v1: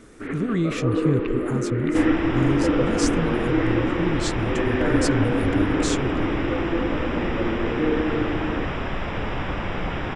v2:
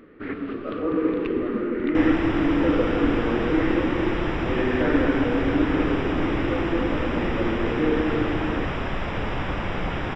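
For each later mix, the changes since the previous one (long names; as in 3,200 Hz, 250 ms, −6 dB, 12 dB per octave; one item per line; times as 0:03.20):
speech: muted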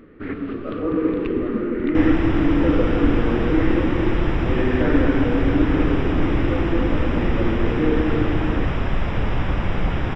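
master: add low-shelf EQ 180 Hz +9.5 dB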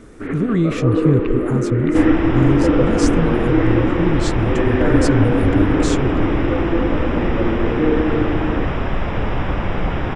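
speech: unmuted
master: add parametric band 660 Hz +4.5 dB 2.9 octaves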